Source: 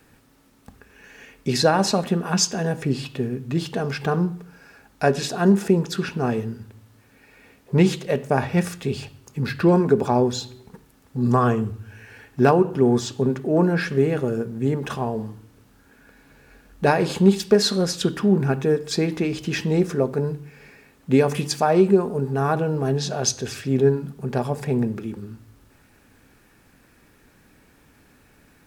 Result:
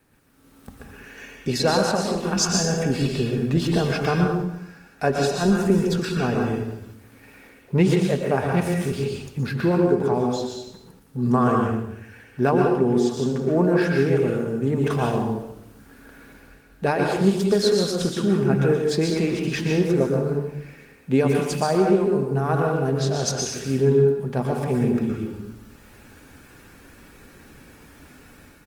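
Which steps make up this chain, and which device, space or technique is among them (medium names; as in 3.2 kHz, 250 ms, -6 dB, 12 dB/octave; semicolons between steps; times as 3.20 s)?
speakerphone in a meeting room (reverberation RT60 0.75 s, pre-delay 112 ms, DRR 0.5 dB; speakerphone echo 80 ms, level -20 dB; level rider; trim -6.5 dB; Opus 24 kbps 48 kHz)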